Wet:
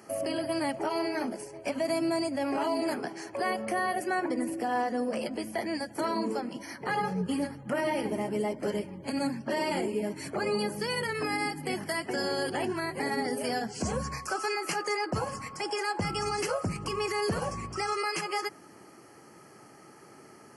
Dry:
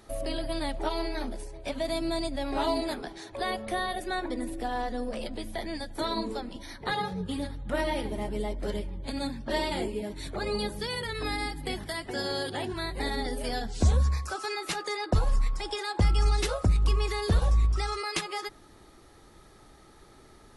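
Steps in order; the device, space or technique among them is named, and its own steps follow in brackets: PA system with an anti-feedback notch (high-pass 130 Hz 24 dB/octave; Butterworth band-stop 3.7 kHz, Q 2.7; peak limiter -24.5 dBFS, peak gain reduction 9 dB); trim +3.5 dB

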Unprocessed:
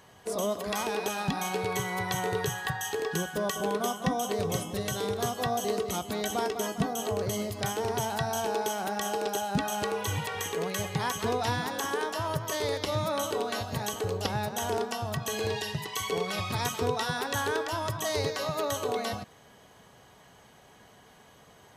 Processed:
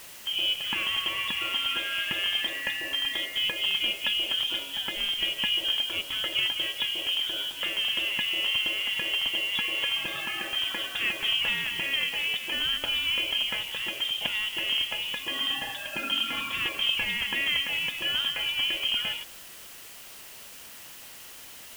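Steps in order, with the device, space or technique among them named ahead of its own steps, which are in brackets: scrambled radio voice (band-pass 330–3100 Hz; frequency inversion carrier 3.6 kHz; white noise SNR 16 dB); trim +3.5 dB

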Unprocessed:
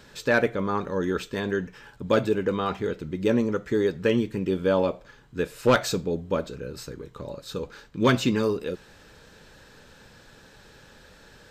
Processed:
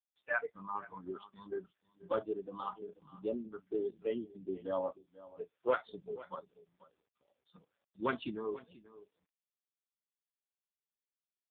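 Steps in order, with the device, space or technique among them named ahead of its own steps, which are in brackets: spectral noise reduction 26 dB; gate with hold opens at -44 dBFS; satellite phone (band-pass 370–3200 Hz; delay 486 ms -18 dB; trim -7.5 dB; AMR-NB 4.75 kbps 8 kHz)

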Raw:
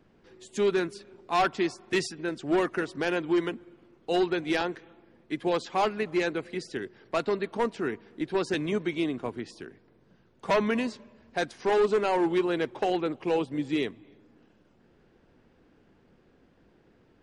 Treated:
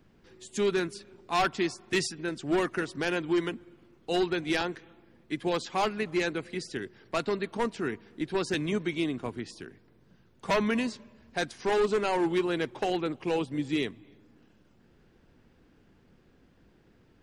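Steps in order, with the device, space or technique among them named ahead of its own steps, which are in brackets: smiley-face EQ (bass shelf 160 Hz +4 dB; peaking EQ 550 Hz -3.5 dB 1.9 oct; treble shelf 5.6 kHz +5.5 dB)

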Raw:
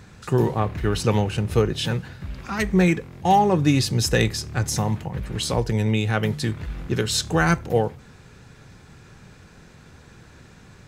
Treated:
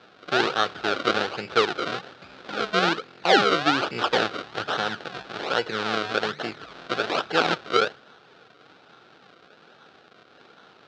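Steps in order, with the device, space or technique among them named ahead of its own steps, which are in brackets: circuit-bent sampling toy (decimation with a swept rate 35×, swing 100% 1.2 Hz; cabinet simulation 500–4700 Hz, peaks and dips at 600 Hz -3 dB, 980 Hz -7 dB, 1.4 kHz +7 dB, 2 kHz -5 dB, 3.8 kHz +4 dB); trim +3.5 dB

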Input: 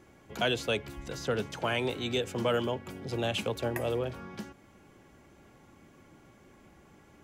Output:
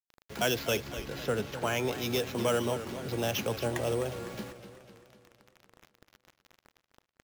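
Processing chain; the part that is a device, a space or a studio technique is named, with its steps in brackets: early 8-bit sampler (sample-rate reducer 8.9 kHz, jitter 0%; bit crusher 8-bit); 0.86–1.93 s: treble shelf 5.5 kHz -5.5 dB; modulated delay 252 ms, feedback 54%, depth 109 cents, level -12 dB

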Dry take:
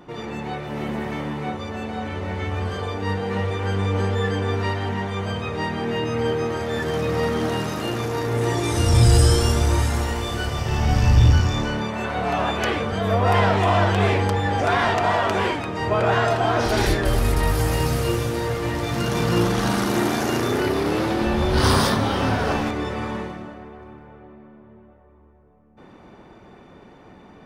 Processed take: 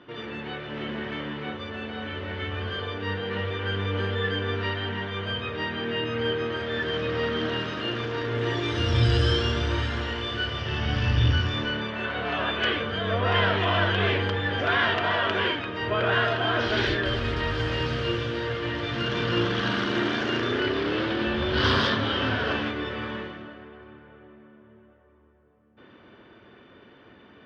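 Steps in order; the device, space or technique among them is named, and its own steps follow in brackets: guitar cabinet (cabinet simulation 85–4500 Hz, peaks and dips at 170 Hz -9 dB, 800 Hz -9 dB, 1.6 kHz +7 dB, 3.1 kHz +10 dB); trim -4 dB

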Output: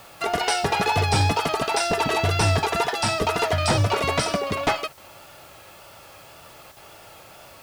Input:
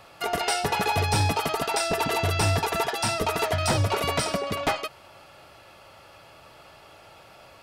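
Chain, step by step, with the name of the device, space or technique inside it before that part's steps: worn cassette (low-pass 8.6 kHz 12 dB/octave; wow and flutter; level dips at 4.93/6.72 s, 44 ms -9 dB; white noise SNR 28 dB); trim +3 dB

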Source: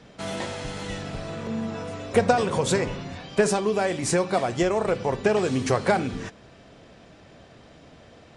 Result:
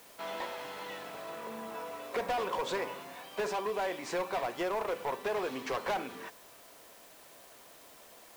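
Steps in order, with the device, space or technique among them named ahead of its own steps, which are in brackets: drive-through speaker (band-pass 440–3700 Hz; peaking EQ 1 kHz +7 dB 0.29 oct; hard clipper -22.5 dBFS, distortion -8 dB; white noise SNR 20 dB); trim -6 dB

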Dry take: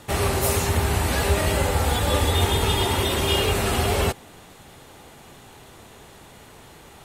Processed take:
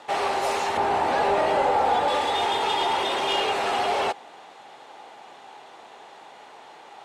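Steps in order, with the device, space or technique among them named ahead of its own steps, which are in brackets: intercom (band-pass 430–4700 Hz; peaking EQ 810 Hz +8.5 dB 0.57 oct; saturation -16.5 dBFS, distortion -18 dB); 0.77–2.08 s: tilt shelf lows +5.5 dB, about 1.5 kHz

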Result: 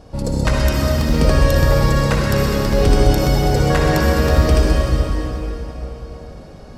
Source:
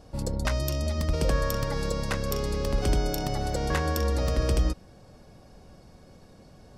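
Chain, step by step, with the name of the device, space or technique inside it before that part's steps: swimming-pool hall (reverberation RT60 3.9 s, pre-delay 52 ms, DRR -3.5 dB; treble shelf 5.2 kHz -6 dB); trim +8 dB

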